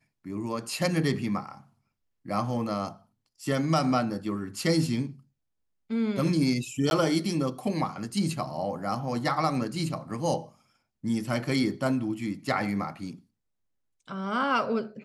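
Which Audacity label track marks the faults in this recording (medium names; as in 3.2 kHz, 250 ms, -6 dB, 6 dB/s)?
6.900000	6.910000	dropout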